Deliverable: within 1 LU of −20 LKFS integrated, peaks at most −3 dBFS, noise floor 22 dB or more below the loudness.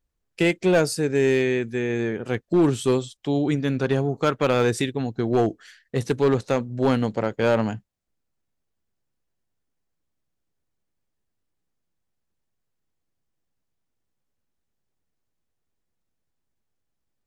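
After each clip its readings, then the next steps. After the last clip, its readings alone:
share of clipped samples 0.6%; peaks flattened at −13.0 dBFS; integrated loudness −23.0 LKFS; sample peak −13.0 dBFS; target loudness −20.0 LKFS
→ clipped peaks rebuilt −13 dBFS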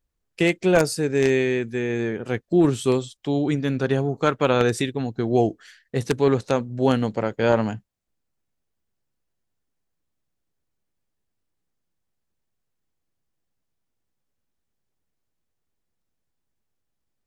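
share of clipped samples 0.0%; integrated loudness −22.5 LKFS; sample peak −4.0 dBFS; target loudness −20.0 LKFS
→ level +2.5 dB
brickwall limiter −3 dBFS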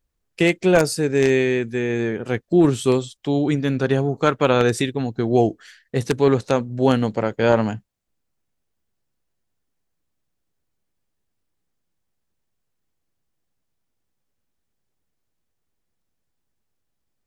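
integrated loudness −20.0 LKFS; sample peak −3.0 dBFS; background noise floor −75 dBFS

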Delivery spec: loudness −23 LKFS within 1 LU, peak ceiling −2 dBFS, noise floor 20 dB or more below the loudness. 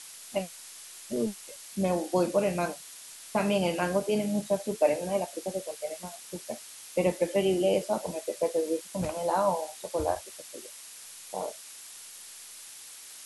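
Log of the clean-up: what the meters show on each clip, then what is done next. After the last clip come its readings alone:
background noise floor −47 dBFS; target noise floor −50 dBFS; integrated loudness −30.0 LKFS; sample peak −11.5 dBFS; target loudness −23.0 LKFS
→ noise reduction from a noise print 6 dB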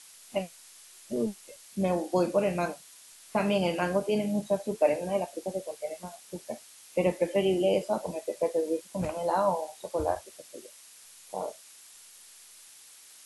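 background noise floor −53 dBFS; integrated loudness −30.0 LKFS; sample peak −11.5 dBFS; target loudness −23.0 LKFS
→ level +7 dB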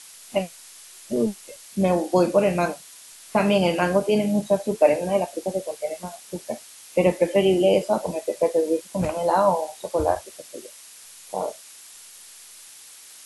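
integrated loudness −23.0 LKFS; sample peak −4.5 dBFS; background noise floor −46 dBFS

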